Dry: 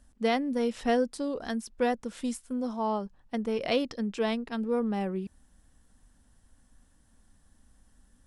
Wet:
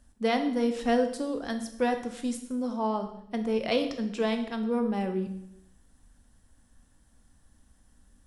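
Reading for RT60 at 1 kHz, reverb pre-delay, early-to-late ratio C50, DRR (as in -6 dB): 0.75 s, 13 ms, 10.0 dB, 6.5 dB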